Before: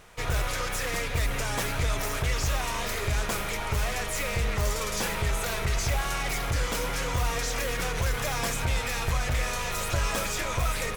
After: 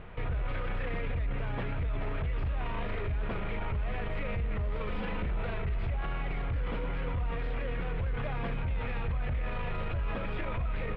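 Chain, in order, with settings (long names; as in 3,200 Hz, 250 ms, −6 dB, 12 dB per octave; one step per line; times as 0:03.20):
0:04.89–0:05.37: lower of the sound and its delayed copy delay 4 ms
inverse Chebyshev low-pass filter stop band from 5,800 Hz, stop band 40 dB
low-shelf EQ 420 Hz +11.5 dB
brickwall limiter −26 dBFS, peak gain reduction 17.5 dB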